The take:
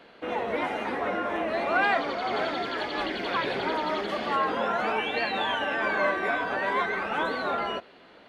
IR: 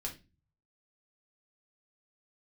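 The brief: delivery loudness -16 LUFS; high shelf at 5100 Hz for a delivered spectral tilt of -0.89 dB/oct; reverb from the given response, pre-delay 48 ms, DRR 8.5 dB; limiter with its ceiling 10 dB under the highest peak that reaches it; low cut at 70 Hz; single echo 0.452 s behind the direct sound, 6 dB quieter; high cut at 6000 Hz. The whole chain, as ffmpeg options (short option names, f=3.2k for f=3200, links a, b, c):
-filter_complex "[0:a]highpass=70,lowpass=6k,highshelf=f=5.1k:g=7,alimiter=limit=-23dB:level=0:latency=1,aecho=1:1:452:0.501,asplit=2[a][b];[1:a]atrim=start_sample=2205,adelay=48[c];[b][c]afir=irnorm=-1:irlink=0,volume=-8dB[d];[a][d]amix=inputs=2:normalize=0,volume=14dB"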